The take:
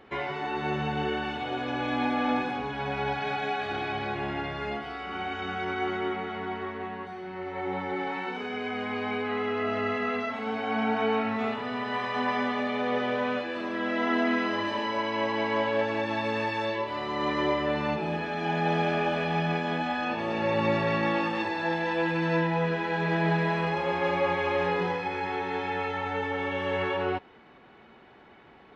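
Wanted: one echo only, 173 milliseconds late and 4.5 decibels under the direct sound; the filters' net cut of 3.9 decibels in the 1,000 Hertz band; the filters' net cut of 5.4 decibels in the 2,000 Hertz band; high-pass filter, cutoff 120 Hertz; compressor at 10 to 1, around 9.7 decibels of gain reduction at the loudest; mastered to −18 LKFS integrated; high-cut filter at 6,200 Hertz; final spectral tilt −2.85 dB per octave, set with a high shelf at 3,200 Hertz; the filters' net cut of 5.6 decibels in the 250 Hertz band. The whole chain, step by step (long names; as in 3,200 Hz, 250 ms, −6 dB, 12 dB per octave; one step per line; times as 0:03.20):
high-pass filter 120 Hz
low-pass filter 6,200 Hz
parametric band 250 Hz −7 dB
parametric band 1,000 Hz −3.5 dB
parametric band 2,000 Hz −8.5 dB
high-shelf EQ 3,200 Hz +8.5 dB
downward compressor 10 to 1, threshold −35 dBFS
single-tap delay 173 ms −4.5 dB
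level +19.5 dB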